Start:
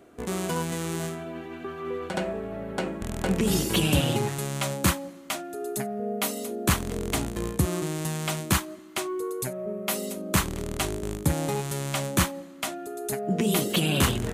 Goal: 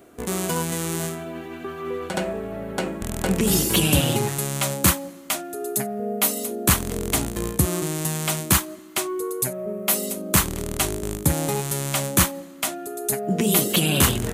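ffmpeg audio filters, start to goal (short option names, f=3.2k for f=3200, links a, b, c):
-af "highshelf=f=8.2k:g=10.5,volume=3dB"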